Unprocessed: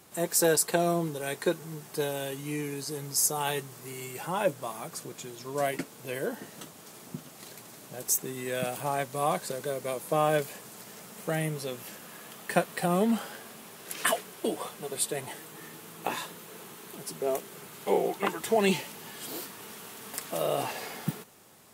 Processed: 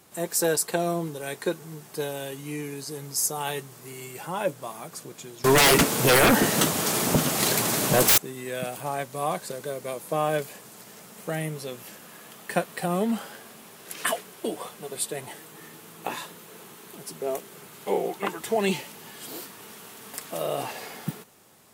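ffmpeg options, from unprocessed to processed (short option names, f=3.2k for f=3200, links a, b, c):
-filter_complex "[0:a]asettb=1/sr,asplit=3[a][b][c];[a]atrim=end=5.444[d];[b]atrim=start=5.44:end=8.18,asetpts=PTS-STARTPTS,afade=t=in:d=0.004:c=qsin,afade=t=out:st=2.736:d=0.004:c=qsin,aeval=exprs='0.211*sin(PI/2*10*val(0)/0.211)':c=same[e];[c]atrim=start=8.176[f];[d][e]acrossfade=d=0.004:c1=hsin:c2=qsin[g];[g][f]acrossfade=d=0.004:c1=qsin:c2=hsin"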